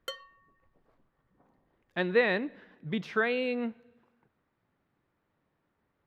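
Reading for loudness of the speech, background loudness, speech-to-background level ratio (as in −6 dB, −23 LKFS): −30.5 LKFS, −44.0 LKFS, 13.5 dB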